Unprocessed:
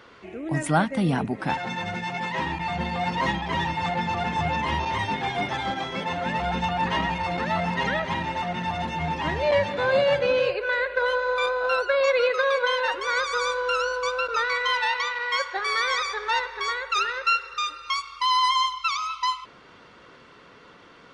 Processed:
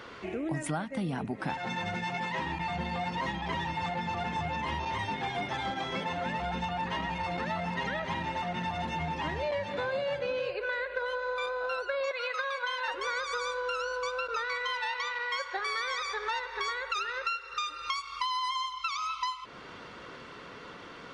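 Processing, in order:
0:12.11–0:12.88: high-pass filter 660 Hz 24 dB per octave
downward compressor 6 to 1, threshold −35 dBFS, peak gain reduction 18 dB
level +4 dB

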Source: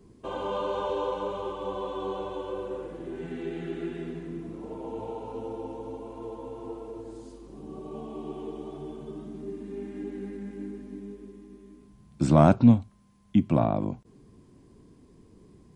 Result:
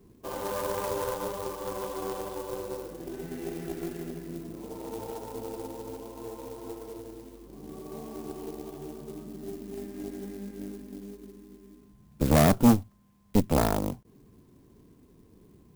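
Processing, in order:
harmonic generator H 5 −25 dB, 6 −11 dB, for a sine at −6 dBFS
converter with an unsteady clock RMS 0.064 ms
level −4 dB

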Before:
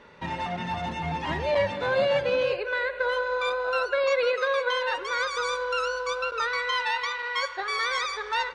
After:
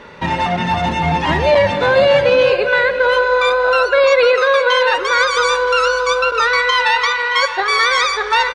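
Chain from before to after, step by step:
single-tap delay 623 ms −14.5 dB
boost into a limiter +16.5 dB
level −3 dB

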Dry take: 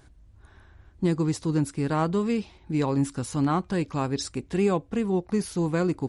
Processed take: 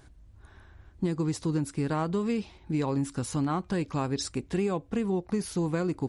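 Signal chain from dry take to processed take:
downward compressor, threshold −24 dBFS, peak gain reduction 6.5 dB

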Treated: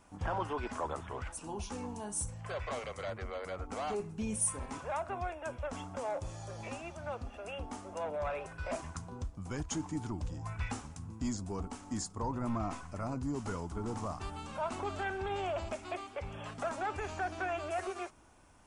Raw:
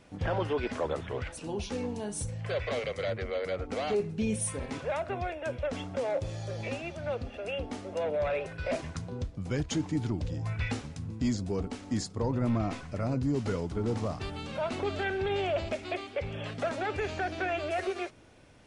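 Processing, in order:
octave-band graphic EQ 125/250/500/1,000/2,000/4,000/8,000 Hz −9/−3/−10/+6/−7/−9/+4 dB

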